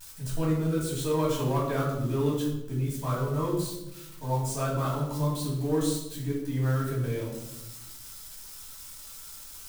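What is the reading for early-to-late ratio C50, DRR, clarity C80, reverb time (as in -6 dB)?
3.0 dB, -5.0 dB, 6.5 dB, 0.90 s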